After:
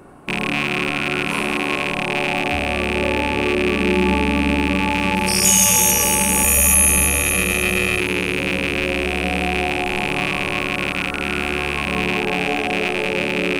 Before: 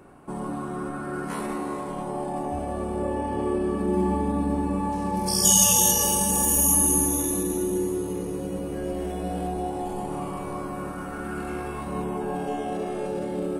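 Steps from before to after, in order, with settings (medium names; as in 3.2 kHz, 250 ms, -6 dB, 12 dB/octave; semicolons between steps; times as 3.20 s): rattle on loud lows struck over -38 dBFS, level -15 dBFS; 6.44–8.00 s: comb 1.6 ms, depth 80%; in parallel at +1 dB: peak limiter -14.5 dBFS, peak gain reduction 10.5 dB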